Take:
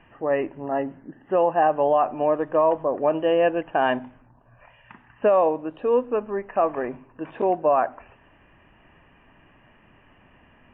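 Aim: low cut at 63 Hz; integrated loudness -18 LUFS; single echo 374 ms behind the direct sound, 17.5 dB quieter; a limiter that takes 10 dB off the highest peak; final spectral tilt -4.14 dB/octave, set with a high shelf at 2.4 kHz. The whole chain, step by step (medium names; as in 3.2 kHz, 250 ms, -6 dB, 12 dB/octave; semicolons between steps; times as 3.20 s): high-pass 63 Hz; treble shelf 2.4 kHz +8.5 dB; peak limiter -18 dBFS; delay 374 ms -17.5 dB; trim +10.5 dB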